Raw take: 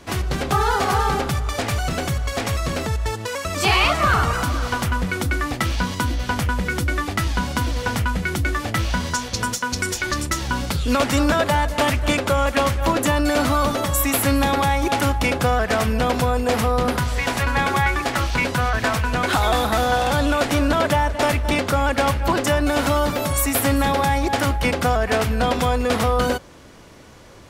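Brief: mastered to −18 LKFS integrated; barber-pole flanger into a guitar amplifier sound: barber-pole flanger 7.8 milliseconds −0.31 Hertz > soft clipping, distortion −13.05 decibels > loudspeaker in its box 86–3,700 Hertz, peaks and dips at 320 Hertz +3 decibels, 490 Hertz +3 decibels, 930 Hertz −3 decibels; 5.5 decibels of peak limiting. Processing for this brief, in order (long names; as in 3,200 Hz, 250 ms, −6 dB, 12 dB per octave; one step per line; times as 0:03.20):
brickwall limiter −15.5 dBFS
barber-pole flanger 7.8 ms −0.31 Hz
soft clipping −25 dBFS
loudspeaker in its box 86–3,700 Hz, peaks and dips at 320 Hz +3 dB, 490 Hz +3 dB, 930 Hz −3 dB
level +13 dB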